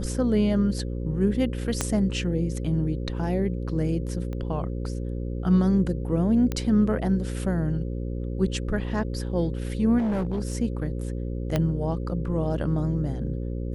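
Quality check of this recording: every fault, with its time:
buzz 60 Hz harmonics 9 -30 dBFS
1.81 pop -9 dBFS
4.33 pop -24 dBFS
6.52 pop -15 dBFS
9.98–10.55 clipped -22.5 dBFS
11.56 pop -11 dBFS

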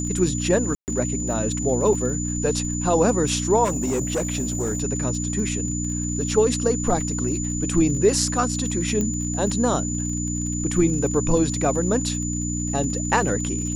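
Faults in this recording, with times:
crackle 47/s -32 dBFS
hum 60 Hz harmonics 5 -27 dBFS
tone 7000 Hz -29 dBFS
0.75–0.88 gap 0.129 s
3.64–4.82 clipped -19.5 dBFS
9.01 pop -13 dBFS

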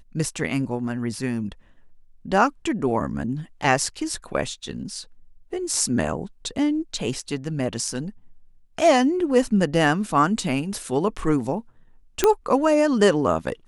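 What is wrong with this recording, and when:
12.24 pop -3 dBFS

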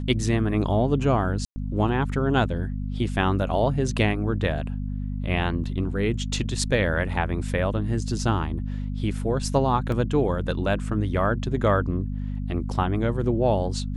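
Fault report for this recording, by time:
hum 50 Hz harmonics 5 -29 dBFS
1.45–1.56 gap 0.11 s
9.92 gap 2 ms

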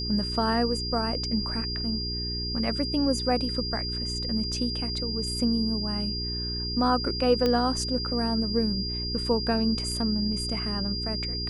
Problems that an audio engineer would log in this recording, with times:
hum 60 Hz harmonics 7 -34 dBFS
tone 4800 Hz -31 dBFS
7.46 pop -13 dBFS

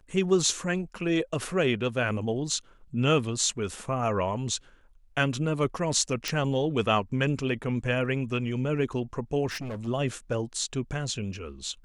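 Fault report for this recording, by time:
6.28 pop -13 dBFS
9.46–9.88 clipped -31.5 dBFS

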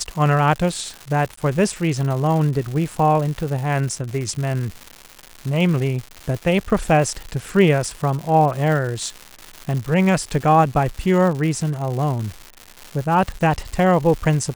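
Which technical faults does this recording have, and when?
crackle 270/s -26 dBFS
1.36–1.37 gap 14 ms

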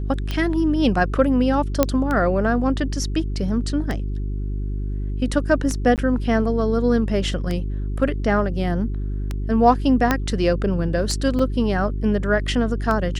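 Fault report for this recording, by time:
hum 50 Hz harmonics 8 -25 dBFS
tick 33 1/3 rpm -12 dBFS
1.83 pop -2 dBFS
5.96–5.98 gap 18 ms
10.11 pop -4 dBFS
11.39 gap 3.7 ms

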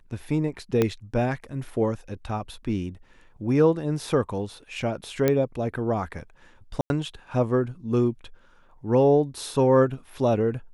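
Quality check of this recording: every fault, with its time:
0.82 pop -9 dBFS
5.28 pop -8 dBFS
6.81–6.9 gap 91 ms

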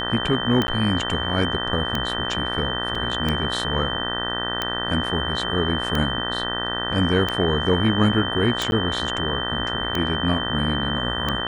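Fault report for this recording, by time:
buzz 60 Hz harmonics 32 -29 dBFS
tick 45 rpm -9 dBFS
tone 3100 Hz -27 dBFS
0.67–0.68 gap 10 ms
2.95 gap 4.3 ms
8.71–8.72 gap 11 ms

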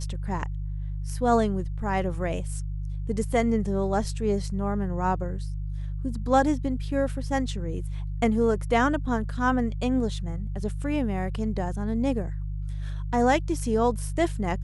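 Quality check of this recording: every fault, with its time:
hum 50 Hz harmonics 3 -31 dBFS

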